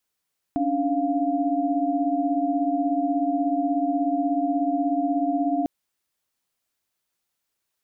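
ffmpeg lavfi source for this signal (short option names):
-f lavfi -i "aevalsrc='0.0562*(sin(2*PI*277.18*t)+sin(2*PI*293.66*t)+sin(2*PI*698.46*t))':d=5.1:s=44100"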